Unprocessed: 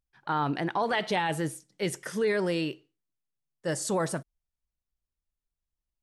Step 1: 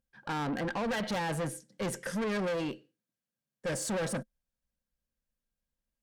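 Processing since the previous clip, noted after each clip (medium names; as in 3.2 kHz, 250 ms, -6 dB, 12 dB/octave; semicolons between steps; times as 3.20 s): small resonant body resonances 220/520/1600 Hz, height 13 dB, ringing for 50 ms; valve stage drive 30 dB, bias 0.25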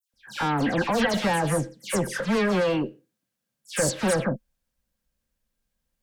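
phase dispersion lows, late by 138 ms, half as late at 2.7 kHz; trim +9 dB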